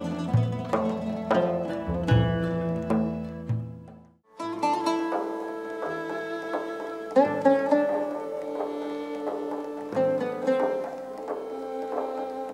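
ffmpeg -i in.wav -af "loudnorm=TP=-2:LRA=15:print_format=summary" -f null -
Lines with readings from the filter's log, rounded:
Input Integrated:    -28.2 LUFS
Input True Peak:      -8.9 dBTP
Input LRA:             4.0 LU
Input Threshold:     -38.4 LUFS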